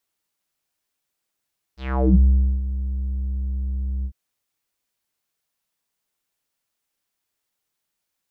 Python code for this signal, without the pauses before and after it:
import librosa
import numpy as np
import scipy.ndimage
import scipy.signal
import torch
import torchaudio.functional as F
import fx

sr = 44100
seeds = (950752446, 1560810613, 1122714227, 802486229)

y = fx.sub_voice(sr, note=36, wave='square', cutoff_hz=120.0, q=4.7, env_oct=5.5, env_s=0.42, attack_ms=421.0, decay_s=0.42, sustain_db=-12, release_s=0.07, note_s=2.28, slope=12)